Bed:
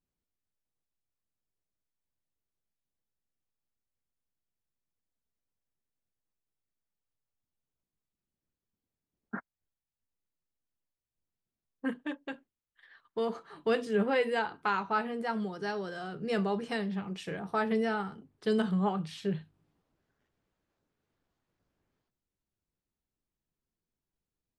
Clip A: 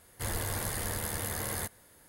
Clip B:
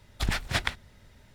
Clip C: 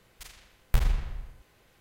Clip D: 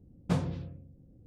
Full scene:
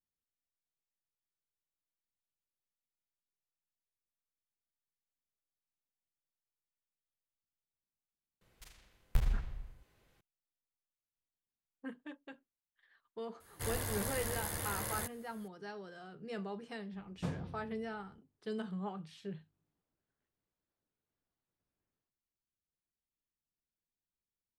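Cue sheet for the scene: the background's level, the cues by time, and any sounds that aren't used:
bed -11.5 dB
8.41 s: add C -10.5 dB + bass shelf 340 Hz +4 dB
13.40 s: add A -4.5 dB
16.93 s: add D -9.5 dB
not used: B

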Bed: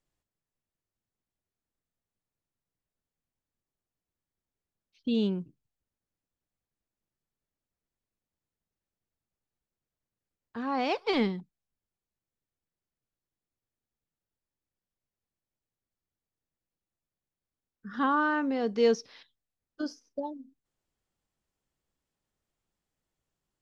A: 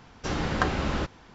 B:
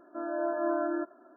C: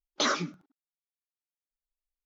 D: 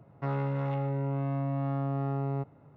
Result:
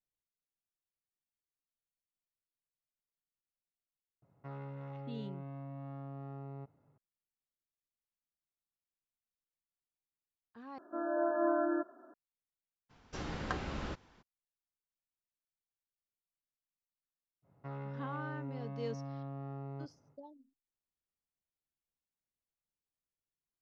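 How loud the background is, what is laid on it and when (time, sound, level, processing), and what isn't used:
bed -17 dB
4.22 s: add D -14.5 dB
10.78 s: replace with B -1.5 dB
12.89 s: add A -12 dB, fades 0.02 s
17.42 s: add D -12.5 dB, fades 0.05 s
not used: C

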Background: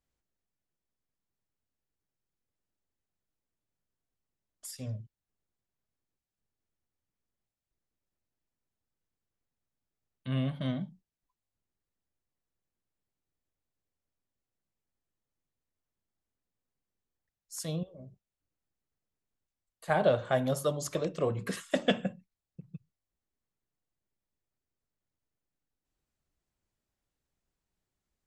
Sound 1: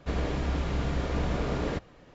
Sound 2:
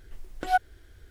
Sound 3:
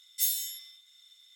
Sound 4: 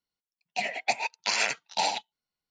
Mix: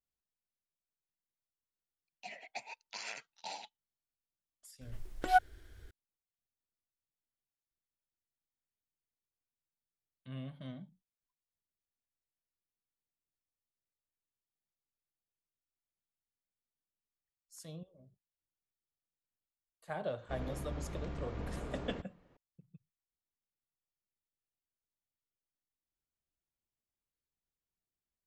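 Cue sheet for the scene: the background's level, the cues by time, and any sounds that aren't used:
background -13 dB
1.67 s: add 4 -17.5 dB
4.81 s: add 2 -3 dB
20.23 s: add 1 -12.5 dB + treble shelf 3.4 kHz -9 dB
not used: 3

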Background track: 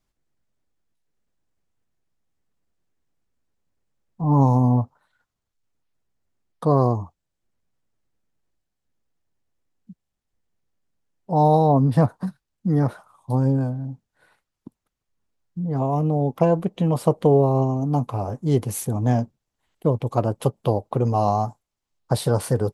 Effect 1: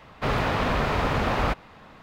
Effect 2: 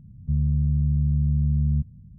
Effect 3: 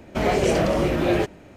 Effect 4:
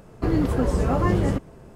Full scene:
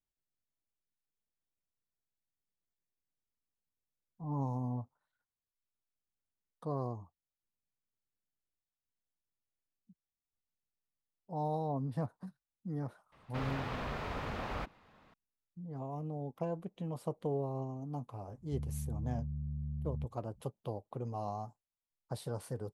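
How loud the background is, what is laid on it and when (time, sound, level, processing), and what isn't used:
background track -19 dB
13.12 s: add 1 -15 dB
18.24 s: add 2 -17.5 dB
not used: 3, 4

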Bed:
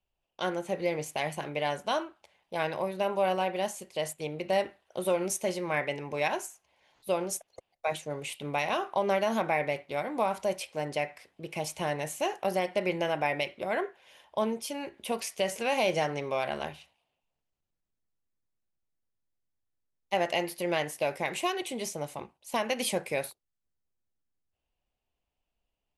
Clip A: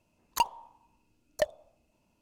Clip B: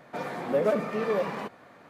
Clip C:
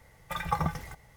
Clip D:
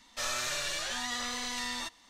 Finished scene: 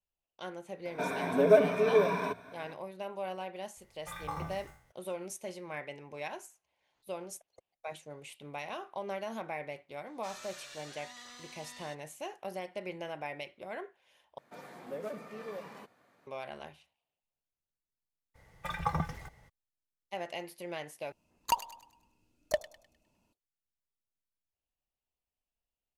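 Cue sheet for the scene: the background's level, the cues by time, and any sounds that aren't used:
bed -11 dB
0.85 s: add B -1.5 dB + rippled EQ curve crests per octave 1.6, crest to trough 14 dB
3.76 s: add C -12.5 dB + spectral sustain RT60 0.56 s
10.06 s: add D -15 dB + high-pass 130 Hz 6 dB/octave
14.38 s: replace with B -15.5 dB + treble shelf 5 kHz +10.5 dB
18.34 s: add C -3 dB, fades 0.02 s + treble shelf 8.6 kHz -9 dB
21.12 s: replace with A -2.5 dB + feedback echo behind a high-pass 102 ms, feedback 39%, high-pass 1.8 kHz, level -11.5 dB

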